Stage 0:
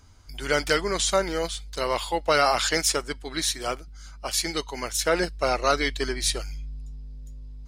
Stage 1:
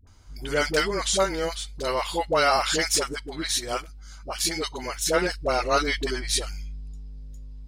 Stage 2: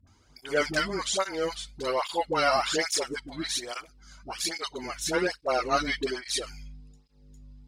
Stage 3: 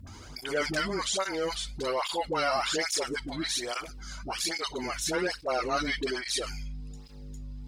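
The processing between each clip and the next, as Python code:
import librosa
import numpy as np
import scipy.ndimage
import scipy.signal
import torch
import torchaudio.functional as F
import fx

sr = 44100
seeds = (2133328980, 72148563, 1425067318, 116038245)

y1 = fx.dispersion(x, sr, late='highs', ms=72.0, hz=520.0)
y2 = fx.high_shelf(y1, sr, hz=11000.0, db=-9.5)
y2 = fx.flanger_cancel(y2, sr, hz=1.2, depth_ms=2.6)
y3 = fx.env_flatten(y2, sr, amount_pct=50)
y3 = y3 * librosa.db_to_amplitude(-5.0)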